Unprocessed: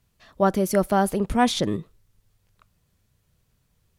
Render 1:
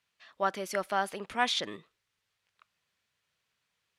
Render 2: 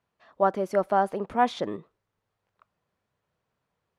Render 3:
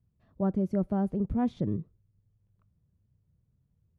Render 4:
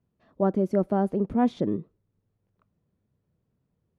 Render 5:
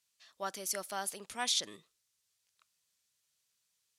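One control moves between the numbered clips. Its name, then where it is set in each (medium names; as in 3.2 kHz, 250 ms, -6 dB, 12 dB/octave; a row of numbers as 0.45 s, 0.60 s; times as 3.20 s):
band-pass filter, frequency: 2.4 kHz, 850 Hz, 110 Hz, 280 Hz, 6.5 kHz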